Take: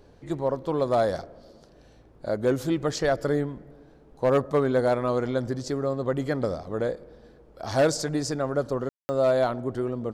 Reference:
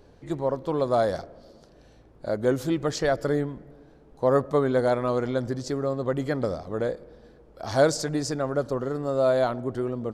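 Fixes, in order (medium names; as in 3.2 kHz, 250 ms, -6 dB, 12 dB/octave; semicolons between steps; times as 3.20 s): clip repair -15 dBFS; room tone fill 8.89–9.09 s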